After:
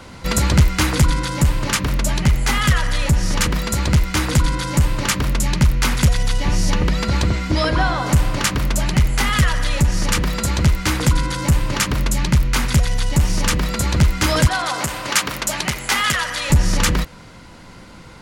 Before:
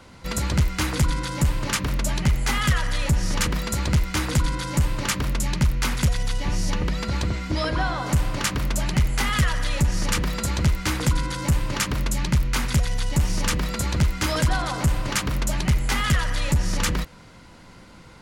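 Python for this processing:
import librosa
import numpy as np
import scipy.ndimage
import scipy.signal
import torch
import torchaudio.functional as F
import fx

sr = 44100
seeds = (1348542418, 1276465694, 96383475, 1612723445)

y = fx.highpass(x, sr, hz=650.0, slope=6, at=(14.47, 16.5))
y = fx.rider(y, sr, range_db=10, speed_s=2.0)
y = y * librosa.db_to_amplitude(5.5)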